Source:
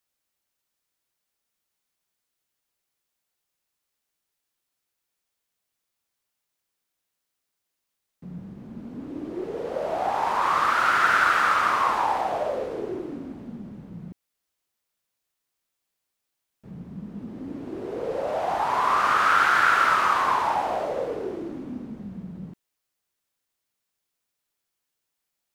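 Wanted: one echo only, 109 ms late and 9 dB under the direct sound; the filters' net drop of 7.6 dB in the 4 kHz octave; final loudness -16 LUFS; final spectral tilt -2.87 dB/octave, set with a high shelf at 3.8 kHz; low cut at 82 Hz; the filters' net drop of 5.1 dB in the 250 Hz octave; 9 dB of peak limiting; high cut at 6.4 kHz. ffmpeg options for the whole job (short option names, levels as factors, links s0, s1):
-af "highpass=82,lowpass=6400,equalizer=f=250:t=o:g=-7,highshelf=f=3800:g=-7.5,equalizer=f=4000:t=o:g=-5.5,alimiter=limit=0.119:level=0:latency=1,aecho=1:1:109:0.355,volume=3.76"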